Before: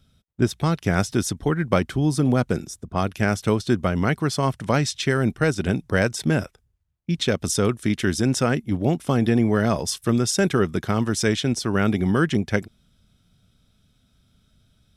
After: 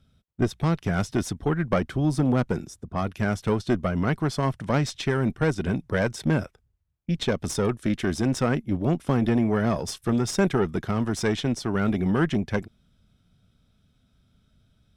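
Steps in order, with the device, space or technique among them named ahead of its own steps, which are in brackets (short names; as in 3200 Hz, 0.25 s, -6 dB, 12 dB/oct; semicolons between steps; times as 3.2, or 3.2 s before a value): tube preamp driven hard (tube stage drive 10 dB, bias 0.65; high shelf 3500 Hz -8 dB); gain +2 dB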